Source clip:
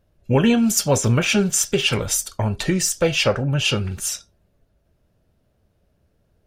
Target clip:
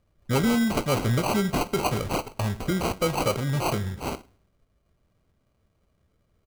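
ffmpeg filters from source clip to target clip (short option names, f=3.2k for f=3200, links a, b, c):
-filter_complex "[0:a]asplit=2[a][b];[b]adelay=102,lowpass=f=2.9k:p=1,volume=-19dB,asplit=2[c][d];[d]adelay=102,lowpass=f=2.9k:p=1,volume=0.49,asplit=2[e][f];[f]adelay=102,lowpass=f=2.9k:p=1,volume=0.49,asplit=2[g][h];[h]adelay=102,lowpass=f=2.9k:p=1,volume=0.49[i];[a][c][e][g][i]amix=inputs=5:normalize=0,acrusher=samples=25:mix=1:aa=0.000001,asoftclip=type=tanh:threshold=-10.5dB,volume=-4.5dB"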